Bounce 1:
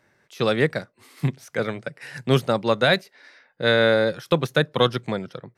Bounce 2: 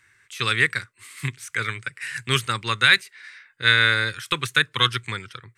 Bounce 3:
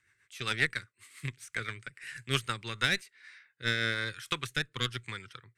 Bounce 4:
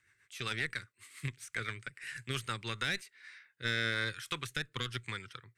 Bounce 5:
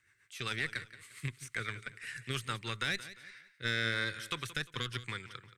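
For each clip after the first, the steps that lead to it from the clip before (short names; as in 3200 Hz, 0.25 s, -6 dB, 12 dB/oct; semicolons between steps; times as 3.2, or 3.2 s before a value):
EQ curve 110 Hz 0 dB, 170 Hz -16 dB, 410 Hz -11 dB, 640 Hz -26 dB, 1100 Hz -1 dB, 2200 Hz +7 dB, 5400 Hz 0 dB, 8200 Hz +12 dB, 12000 Hz +1 dB; gain +2.5 dB
added harmonics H 4 -16 dB, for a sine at -1 dBFS; rotary speaker horn 7.5 Hz, later 1 Hz, at 2.5; gain -8.5 dB
limiter -22 dBFS, peak gain reduction 10.5 dB
feedback echo 0.175 s, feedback 34%, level -15 dB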